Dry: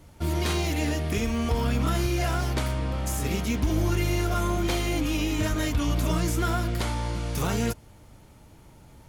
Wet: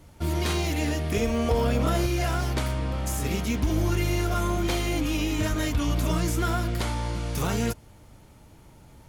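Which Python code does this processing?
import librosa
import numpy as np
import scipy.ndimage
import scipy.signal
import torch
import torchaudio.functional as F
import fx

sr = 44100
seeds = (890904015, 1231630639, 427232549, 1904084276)

y = fx.peak_eq(x, sr, hz=550.0, db=10.0, octaves=0.69, at=(1.14, 2.06))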